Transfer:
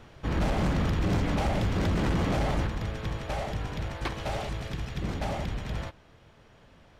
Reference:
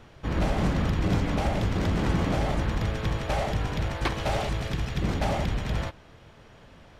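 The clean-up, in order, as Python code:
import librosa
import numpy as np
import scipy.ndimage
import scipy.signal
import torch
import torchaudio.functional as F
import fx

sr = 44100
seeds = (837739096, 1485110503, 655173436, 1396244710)

y = fx.fix_declip(x, sr, threshold_db=-21.5)
y = fx.gain(y, sr, db=fx.steps((0.0, 0.0), (2.67, 5.0)))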